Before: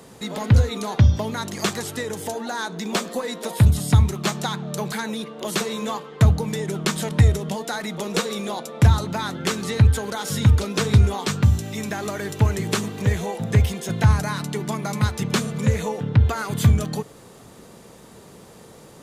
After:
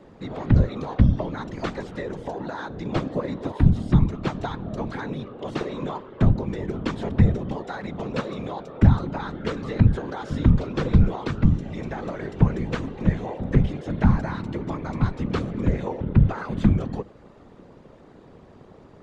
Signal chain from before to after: 2.94–3.52 bell 200 Hz +10.5 dB 0.6 oct; whisperiser; tape spacing loss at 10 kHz 32 dB; gain -1 dB

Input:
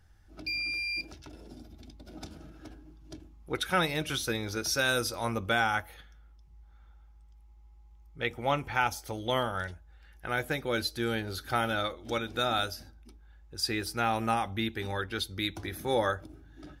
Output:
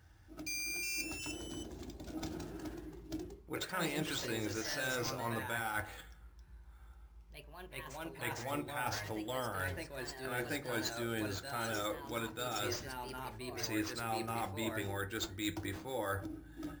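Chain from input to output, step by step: HPF 61 Hz; reverse; compressor 6:1, threshold -38 dBFS, peak gain reduction 15.5 dB; reverse; sample-rate reducer 11000 Hz, jitter 0%; on a send at -7 dB: reverb RT60 0.35 s, pre-delay 3 ms; on the sum: echoes that change speed 0.412 s, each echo +2 st, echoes 2, each echo -6 dB; gain +1 dB

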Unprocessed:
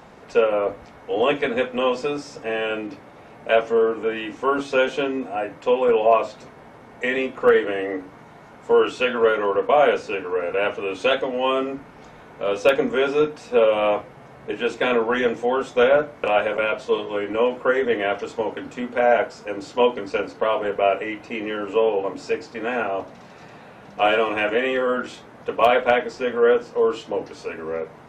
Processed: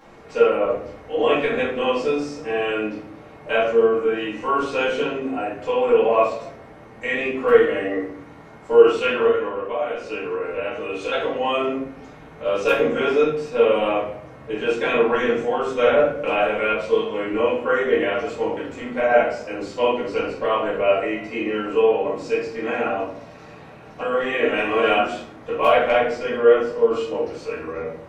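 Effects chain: 9.26–11.12 compressor 6:1, threshold -24 dBFS, peak gain reduction 12 dB; 24.01–24.97 reverse; shoebox room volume 110 m³, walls mixed, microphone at 2.2 m; gain -8.5 dB

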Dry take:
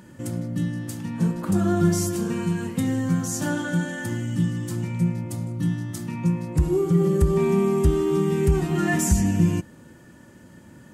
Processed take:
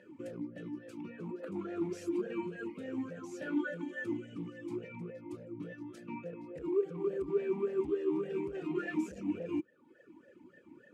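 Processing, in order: reverb removal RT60 0.82 s; in parallel at -2.5 dB: negative-ratio compressor -27 dBFS, ratio -0.5; on the sum: overloaded stage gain 18 dB; vowel sweep e-u 3.5 Hz; gain -2.5 dB

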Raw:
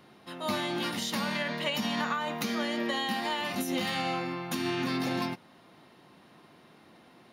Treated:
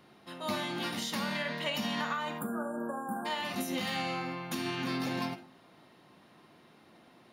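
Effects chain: spectral delete 2.39–3.26, 1700–7200 Hz; reverb RT60 0.35 s, pre-delay 10 ms, DRR 9.5 dB; gain -3 dB

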